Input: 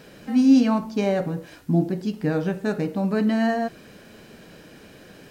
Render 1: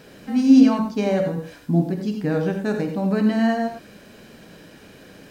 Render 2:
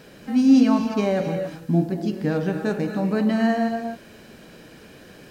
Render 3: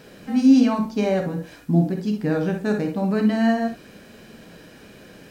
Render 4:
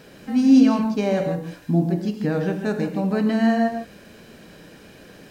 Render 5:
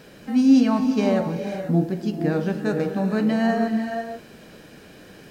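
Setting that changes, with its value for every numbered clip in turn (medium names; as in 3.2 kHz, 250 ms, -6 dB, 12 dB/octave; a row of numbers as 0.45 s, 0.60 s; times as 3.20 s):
gated-style reverb, gate: 120 ms, 300 ms, 80 ms, 180 ms, 530 ms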